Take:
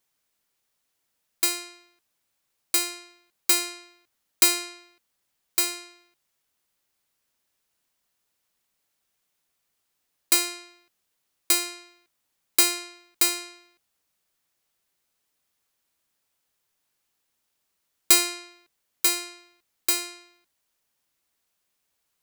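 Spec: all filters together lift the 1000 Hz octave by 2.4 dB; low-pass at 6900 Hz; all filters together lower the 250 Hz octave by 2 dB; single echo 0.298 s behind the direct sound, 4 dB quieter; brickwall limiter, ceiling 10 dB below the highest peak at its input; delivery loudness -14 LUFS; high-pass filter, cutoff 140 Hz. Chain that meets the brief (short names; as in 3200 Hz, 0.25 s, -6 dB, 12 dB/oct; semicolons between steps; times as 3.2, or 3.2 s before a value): HPF 140 Hz; LPF 6900 Hz; bell 250 Hz -4 dB; bell 1000 Hz +3.5 dB; limiter -18.5 dBFS; echo 0.298 s -4 dB; gain +17.5 dB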